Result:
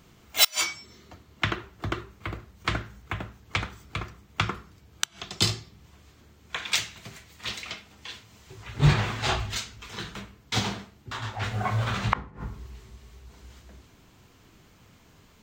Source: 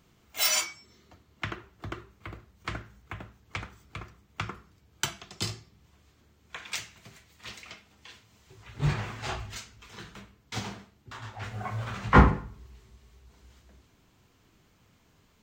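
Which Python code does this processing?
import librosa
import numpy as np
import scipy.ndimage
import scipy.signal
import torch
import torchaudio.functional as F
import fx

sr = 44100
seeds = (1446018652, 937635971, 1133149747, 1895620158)

y = fx.gate_flip(x, sr, shuts_db=-13.0, range_db=-31)
y = fx.dynamic_eq(y, sr, hz=3700.0, q=2.5, threshold_db=-56.0, ratio=4.0, max_db=5)
y = y * 10.0 ** (7.5 / 20.0)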